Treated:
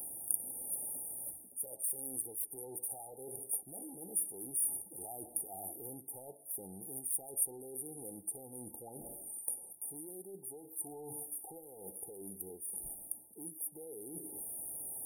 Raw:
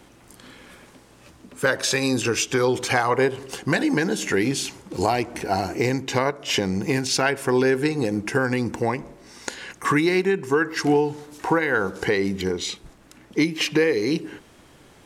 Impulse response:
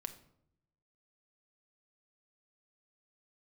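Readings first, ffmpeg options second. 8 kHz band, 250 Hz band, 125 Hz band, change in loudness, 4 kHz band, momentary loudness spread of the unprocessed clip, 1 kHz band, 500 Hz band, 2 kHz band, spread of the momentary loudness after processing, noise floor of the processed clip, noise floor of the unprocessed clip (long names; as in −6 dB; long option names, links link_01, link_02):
−4.5 dB, −28.0 dB, −29.0 dB, −17.0 dB, below −40 dB, 9 LU, −28.0 dB, −27.5 dB, below −40 dB, 11 LU, −57 dBFS, −52 dBFS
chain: -af "asoftclip=type=tanh:threshold=-17.5dB,lowshelf=frequency=460:gain=-11,areverse,acompressor=threshold=-46dB:ratio=6,areverse,aexciter=amount=14.3:drive=6:freq=5100,afftfilt=real='re*(1-between(b*sr/4096,890,8900))':imag='im*(1-between(b*sr/4096,890,8900))':win_size=4096:overlap=0.75,volume=-1.5dB"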